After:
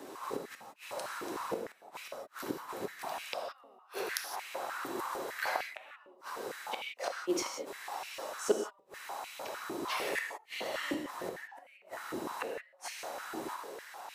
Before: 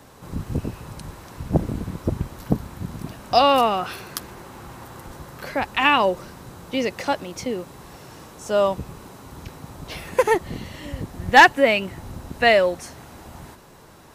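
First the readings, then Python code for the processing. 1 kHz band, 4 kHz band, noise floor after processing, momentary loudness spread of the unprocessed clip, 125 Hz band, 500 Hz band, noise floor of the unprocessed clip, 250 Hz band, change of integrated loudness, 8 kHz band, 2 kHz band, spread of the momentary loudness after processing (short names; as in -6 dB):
-17.5 dB, -14.5 dB, -62 dBFS, 23 LU, -29.0 dB, -15.5 dB, -48 dBFS, -14.5 dB, -18.5 dB, -5.0 dB, -17.0 dB, 12 LU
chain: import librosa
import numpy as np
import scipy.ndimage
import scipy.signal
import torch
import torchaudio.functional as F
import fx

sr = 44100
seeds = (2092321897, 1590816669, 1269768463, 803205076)

p1 = fx.dynamic_eq(x, sr, hz=3200.0, q=0.83, threshold_db=-36.0, ratio=4.0, max_db=-5)
p2 = 10.0 ** (-12.0 / 20.0) * np.tanh(p1 / 10.0 ** (-12.0 / 20.0))
p3 = p1 + (p2 * librosa.db_to_amplitude(-3.5))
p4 = fx.gate_flip(p3, sr, shuts_db=-14.0, range_db=-41)
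p5 = fx.rev_gated(p4, sr, seeds[0], gate_ms=200, shape='flat', drr_db=2.5)
p6 = fx.filter_held_highpass(p5, sr, hz=6.6, low_hz=340.0, high_hz=2400.0)
y = p6 * librosa.db_to_amplitude(-7.0)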